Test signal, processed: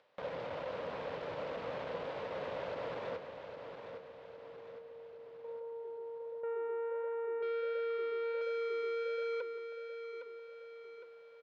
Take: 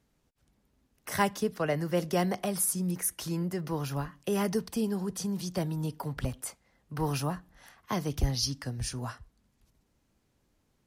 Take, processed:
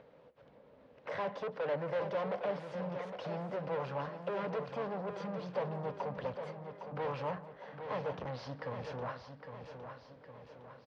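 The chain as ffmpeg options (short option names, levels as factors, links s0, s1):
-filter_complex "[0:a]equalizer=f=490:t=o:w=0.42:g=11.5,aeval=exprs='(tanh(70.8*val(0)+0.4)-tanh(0.4))/70.8':c=same,highpass=160,equalizer=f=220:t=q:w=4:g=-6,equalizer=f=350:t=q:w=4:g=-6,equalizer=f=580:t=q:w=4:g=8,equalizer=f=970:t=q:w=4:g=4,lowpass=f=3900:w=0.5412,lowpass=f=3900:w=1.3066,acompressor=mode=upward:threshold=0.00316:ratio=2.5,asplit=2[s0][s1];[s1]aecho=0:1:810|1620|2430|3240|4050|4860:0.398|0.195|0.0956|0.0468|0.023|0.0112[s2];[s0][s2]amix=inputs=2:normalize=0,flanger=delay=1.2:depth=6.1:regen=-88:speed=1.4:shape=triangular,acrossover=split=2200[s3][s4];[s3]acontrast=83[s5];[s5][s4]amix=inputs=2:normalize=0,asplit=2[s6][s7];[s7]adelay=170,highpass=300,lowpass=3400,asoftclip=type=hard:threshold=0.0355,volume=0.126[s8];[s6][s8]amix=inputs=2:normalize=0,volume=0.891"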